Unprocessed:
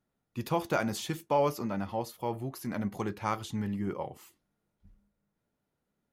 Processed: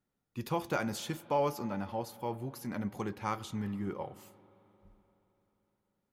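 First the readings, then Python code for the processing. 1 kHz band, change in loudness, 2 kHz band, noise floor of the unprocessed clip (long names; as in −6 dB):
−3.0 dB, −3.0 dB, −3.0 dB, −83 dBFS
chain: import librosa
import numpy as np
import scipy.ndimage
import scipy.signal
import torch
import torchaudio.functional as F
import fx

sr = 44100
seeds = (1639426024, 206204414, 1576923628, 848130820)

y = fx.notch(x, sr, hz=650.0, q=13.0)
y = fx.rev_spring(y, sr, rt60_s=3.8, pass_ms=(43, 57), chirp_ms=70, drr_db=17.5)
y = F.gain(torch.from_numpy(y), -3.0).numpy()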